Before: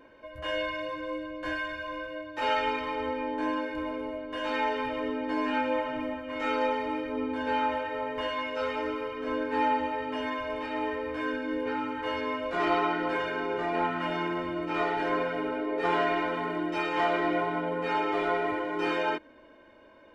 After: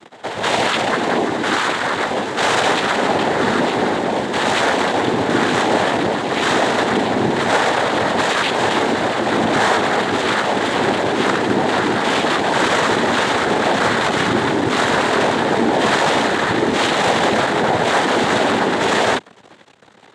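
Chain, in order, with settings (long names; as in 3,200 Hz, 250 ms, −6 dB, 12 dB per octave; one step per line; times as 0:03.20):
sub-harmonics by changed cycles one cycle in 3, muted
leveller curve on the samples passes 5
cochlear-implant simulation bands 6
echo ahead of the sound 121 ms −16.5 dB
level +3 dB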